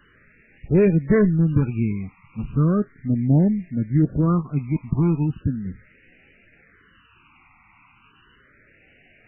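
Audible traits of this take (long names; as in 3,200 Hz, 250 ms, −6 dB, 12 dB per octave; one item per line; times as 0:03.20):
a quantiser's noise floor 8 bits, dither triangular
phaser sweep stages 12, 0.36 Hz, lowest notch 520–1,100 Hz
MP3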